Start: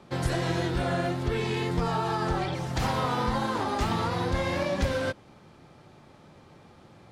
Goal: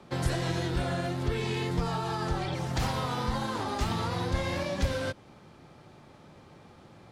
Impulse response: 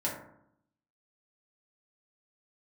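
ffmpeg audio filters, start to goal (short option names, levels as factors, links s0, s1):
-filter_complex "[0:a]acrossover=split=150|3000[s0][s1][s2];[s1]acompressor=threshold=0.0316:ratio=6[s3];[s0][s3][s2]amix=inputs=3:normalize=0"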